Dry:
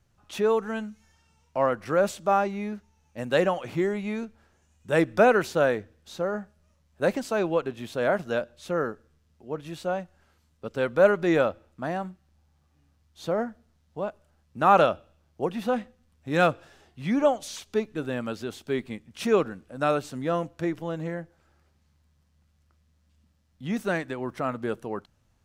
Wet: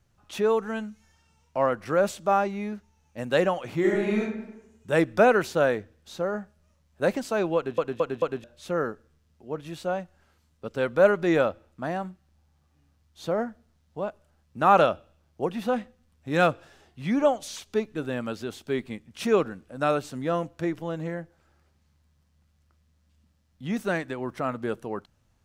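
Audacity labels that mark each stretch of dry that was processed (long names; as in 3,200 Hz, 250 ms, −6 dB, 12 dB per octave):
3.790000	4.210000	thrown reverb, RT60 0.95 s, DRR −3 dB
7.560000	7.560000	stutter in place 0.22 s, 4 plays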